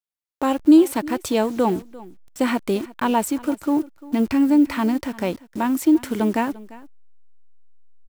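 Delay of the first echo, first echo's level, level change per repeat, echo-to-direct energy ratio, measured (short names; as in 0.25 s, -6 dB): 0.346 s, -20.0 dB, no steady repeat, -20.0 dB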